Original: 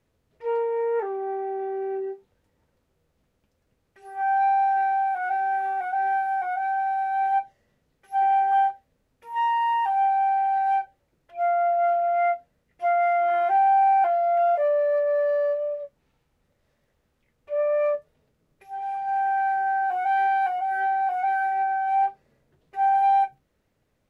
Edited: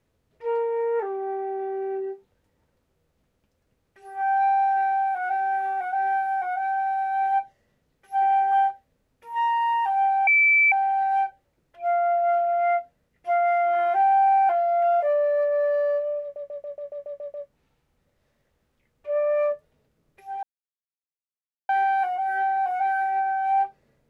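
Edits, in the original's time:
10.27 s: add tone 2.32 kHz -14.5 dBFS 0.45 s
15.77 s: stutter 0.14 s, 9 plays
18.86–20.12 s: mute

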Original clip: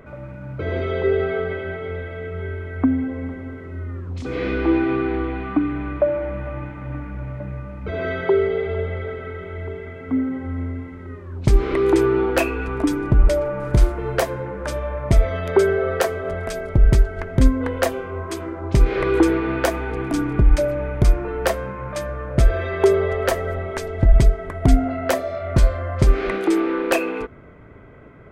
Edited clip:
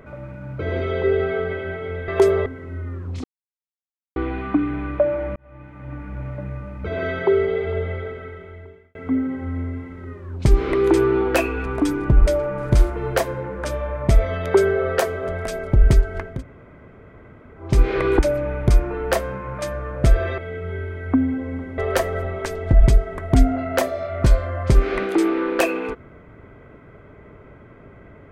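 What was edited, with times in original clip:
2.08–3.48 s: swap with 22.72–23.10 s
4.26–5.18 s: mute
6.38–7.25 s: fade in
8.93–9.97 s: fade out
17.33–18.68 s: room tone, crossfade 0.24 s
19.21–20.53 s: delete

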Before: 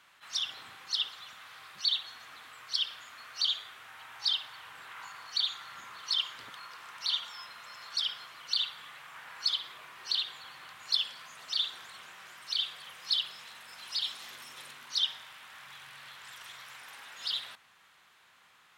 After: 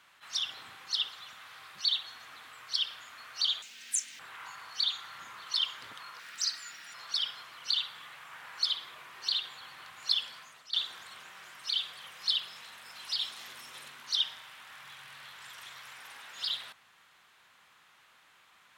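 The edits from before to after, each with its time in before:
3.62–4.76 s: speed 199%
6.76–7.77 s: speed 135%
11.16–11.56 s: fade out linear, to -16 dB

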